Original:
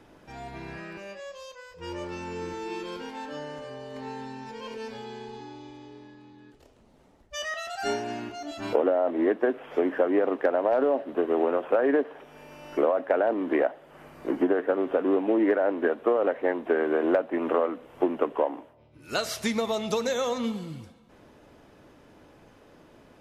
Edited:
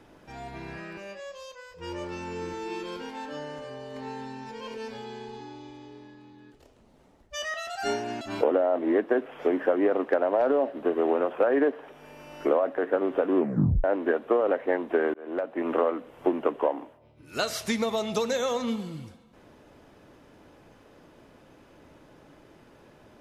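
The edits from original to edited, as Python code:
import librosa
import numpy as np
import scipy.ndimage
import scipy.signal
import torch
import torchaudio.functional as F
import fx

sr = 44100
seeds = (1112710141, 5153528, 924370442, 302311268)

y = fx.edit(x, sr, fx.cut(start_s=8.21, length_s=0.32),
    fx.cut(start_s=13.1, length_s=1.44),
    fx.tape_stop(start_s=15.11, length_s=0.49),
    fx.fade_in_span(start_s=16.9, length_s=0.55), tone=tone)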